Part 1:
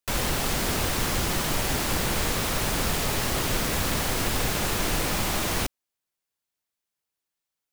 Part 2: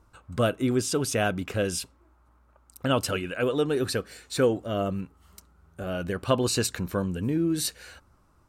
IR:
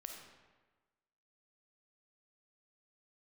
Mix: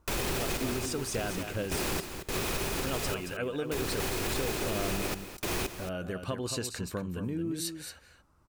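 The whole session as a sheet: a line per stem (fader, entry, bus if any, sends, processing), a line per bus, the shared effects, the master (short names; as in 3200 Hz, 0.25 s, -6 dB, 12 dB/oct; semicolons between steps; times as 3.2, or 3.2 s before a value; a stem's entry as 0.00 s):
-2.0 dB, 0.00 s, no send, echo send -12.5 dB, random-step tremolo, depth 100%; small resonant body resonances 380/2500 Hz, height 10 dB
-5.0 dB, 0.00 s, no send, echo send -8 dB, compressor, threshold -25 dBFS, peak gain reduction 8.5 dB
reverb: off
echo: echo 0.225 s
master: limiter -21.5 dBFS, peak gain reduction 7.5 dB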